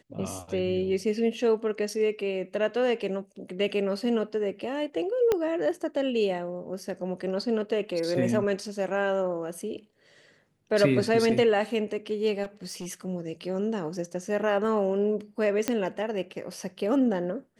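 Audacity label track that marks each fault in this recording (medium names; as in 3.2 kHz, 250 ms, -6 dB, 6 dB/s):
5.320000	5.320000	pop -12 dBFS
12.430000	12.870000	clipped -32 dBFS
15.680000	15.680000	pop -10 dBFS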